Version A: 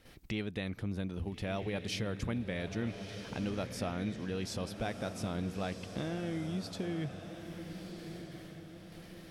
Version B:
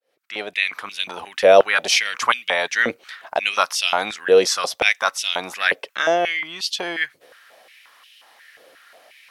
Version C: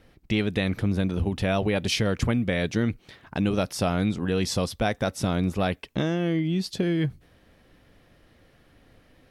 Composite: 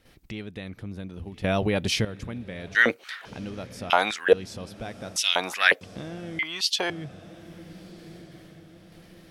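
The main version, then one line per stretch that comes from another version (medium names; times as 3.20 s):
A
1.44–2.05 s: from C
2.75–3.25 s: from B
3.90–4.33 s: from B
5.16–5.81 s: from B
6.39–6.90 s: from B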